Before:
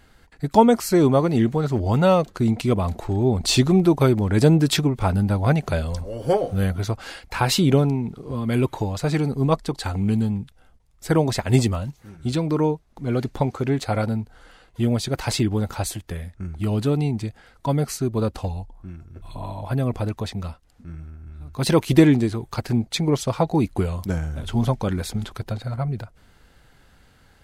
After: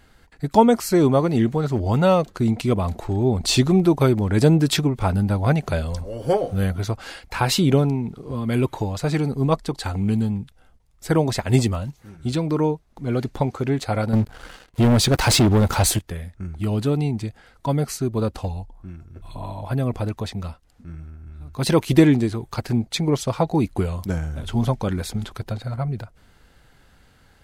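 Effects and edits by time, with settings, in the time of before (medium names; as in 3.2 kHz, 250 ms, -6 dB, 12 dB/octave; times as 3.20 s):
14.13–15.99 s: waveshaping leveller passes 3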